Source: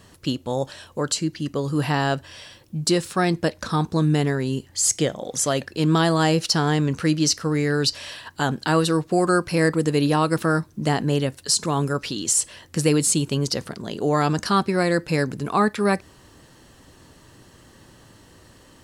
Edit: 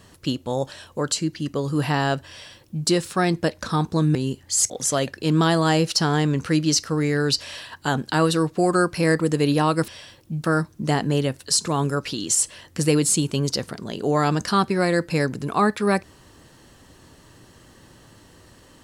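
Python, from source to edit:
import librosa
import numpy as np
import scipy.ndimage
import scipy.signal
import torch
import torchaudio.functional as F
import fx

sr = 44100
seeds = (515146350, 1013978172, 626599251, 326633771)

y = fx.edit(x, sr, fx.duplicate(start_s=2.31, length_s=0.56, to_s=10.42),
    fx.cut(start_s=4.15, length_s=0.26),
    fx.cut(start_s=4.96, length_s=0.28), tone=tone)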